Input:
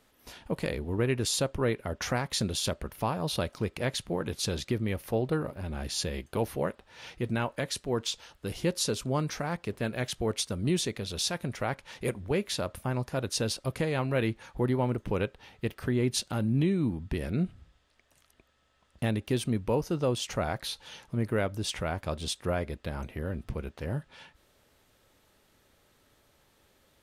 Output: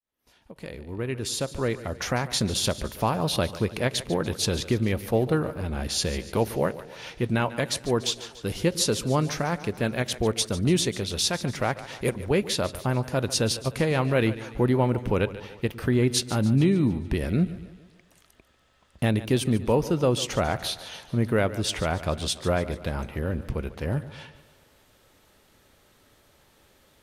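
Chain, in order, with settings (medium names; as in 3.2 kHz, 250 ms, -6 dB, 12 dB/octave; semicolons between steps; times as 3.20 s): fade-in on the opening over 2.75 s; two-band feedback delay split 350 Hz, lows 107 ms, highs 145 ms, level -15 dB; endings held to a fixed fall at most 440 dB/s; trim +5.5 dB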